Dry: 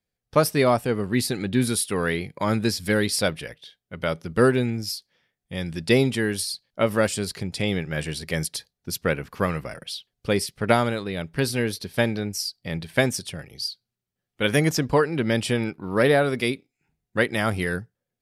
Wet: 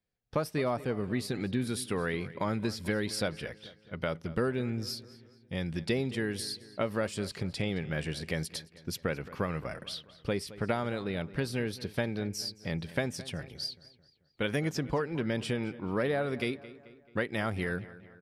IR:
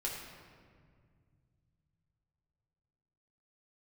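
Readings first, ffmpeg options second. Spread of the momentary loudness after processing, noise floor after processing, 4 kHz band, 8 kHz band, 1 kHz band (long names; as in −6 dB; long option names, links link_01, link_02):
8 LU, −62 dBFS, −9.0 dB, −12.5 dB, −10.0 dB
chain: -filter_complex "[0:a]equalizer=frequency=13000:width=0.32:gain=-9,acompressor=threshold=-27dB:ratio=3,asplit=2[link_01][link_02];[link_02]adelay=218,lowpass=frequency=4300:poles=1,volume=-17dB,asplit=2[link_03][link_04];[link_04]adelay=218,lowpass=frequency=4300:poles=1,volume=0.51,asplit=2[link_05][link_06];[link_06]adelay=218,lowpass=frequency=4300:poles=1,volume=0.51,asplit=2[link_07][link_08];[link_08]adelay=218,lowpass=frequency=4300:poles=1,volume=0.51[link_09];[link_01][link_03][link_05][link_07][link_09]amix=inputs=5:normalize=0,volume=-2.5dB"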